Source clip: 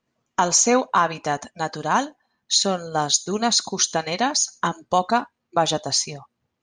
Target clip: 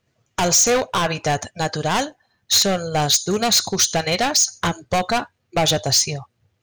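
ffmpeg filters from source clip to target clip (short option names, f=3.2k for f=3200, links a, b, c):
-af "volume=19.5dB,asoftclip=hard,volume=-19.5dB,equalizer=f=100:t=o:w=0.67:g=11,equalizer=f=250:t=o:w=0.67:g=-8,equalizer=f=1k:t=o:w=0.67:g=-7,volume=7.5dB"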